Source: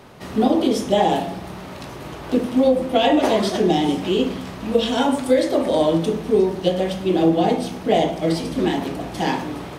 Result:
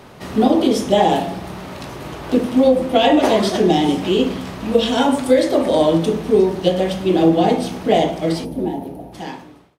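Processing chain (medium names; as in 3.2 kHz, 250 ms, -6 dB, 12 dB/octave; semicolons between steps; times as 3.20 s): fade out at the end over 1.94 s; time-frequency box 8.45–9.13 s, 950–9300 Hz -14 dB; trim +3 dB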